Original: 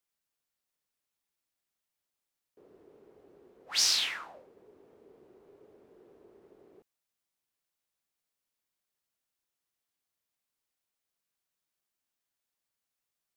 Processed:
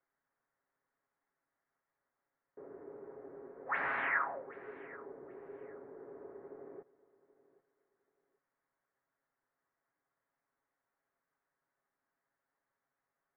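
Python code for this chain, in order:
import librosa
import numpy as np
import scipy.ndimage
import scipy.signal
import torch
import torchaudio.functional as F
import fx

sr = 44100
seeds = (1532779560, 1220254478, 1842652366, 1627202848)

y = scipy.signal.sosfilt(scipy.signal.butter(8, 1900.0, 'lowpass', fs=sr, output='sos'), x)
y = fx.low_shelf(y, sr, hz=200.0, db=-9.5)
y = y + 0.47 * np.pad(y, (int(7.3 * sr / 1000.0), 0))[:len(y)]
y = fx.echo_feedback(y, sr, ms=780, feedback_pct=25, wet_db=-20)
y = F.gain(torch.from_numpy(y), 9.0).numpy()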